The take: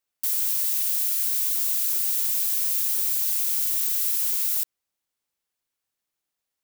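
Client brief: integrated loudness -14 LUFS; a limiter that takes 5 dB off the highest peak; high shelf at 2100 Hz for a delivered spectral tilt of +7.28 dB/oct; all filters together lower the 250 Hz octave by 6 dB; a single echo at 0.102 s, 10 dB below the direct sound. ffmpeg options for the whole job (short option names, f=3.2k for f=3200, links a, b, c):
-af "equalizer=f=250:t=o:g=-9,highshelf=f=2.1k:g=6.5,alimiter=limit=-9.5dB:level=0:latency=1,aecho=1:1:102:0.316,volume=2dB"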